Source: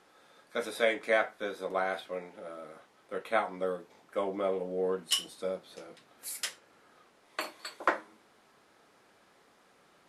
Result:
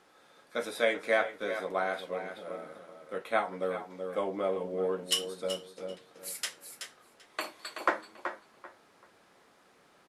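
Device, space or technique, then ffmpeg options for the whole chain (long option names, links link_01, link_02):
ducked delay: -filter_complex "[0:a]asettb=1/sr,asplit=3[link_01][link_02][link_03];[link_01]atrim=end=5.484[link_04];[link_02]atrim=start=5.48:end=5.89,asetpts=PTS-STARTPTS,afade=type=in:duration=0.004:curve=qsin,afade=type=out:start_time=0.406:duration=0.004:curve=qsin,agate=range=-33dB:threshold=-43dB:ratio=3:detection=peak[link_05];[link_03]atrim=start=5.886[link_06];[link_04][link_05]acrossfade=duration=0.004:curve1=hsin:curve2=qsin[link_07];[link_07][link_06]acrossfade=duration=0.004:curve1=qsin:curve2=hsin,asplit=3[link_08][link_09][link_10];[link_09]adelay=377,volume=-8dB[link_11];[link_10]apad=whole_len=461234[link_12];[link_11][link_12]sidechaincompress=threshold=-33dB:ratio=8:attack=16:release=483[link_13];[link_08][link_13]amix=inputs=2:normalize=0,asplit=2[link_14][link_15];[link_15]adelay=388,lowpass=frequency=4200:poles=1,volume=-13.5dB,asplit=2[link_16][link_17];[link_17]adelay=388,lowpass=frequency=4200:poles=1,volume=0.26,asplit=2[link_18][link_19];[link_19]adelay=388,lowpass=frequency=4200:poles=1,volume=0.26[link_20];[link_14][link_16][link_18][link_20]amix=inputs=4:normalize=0"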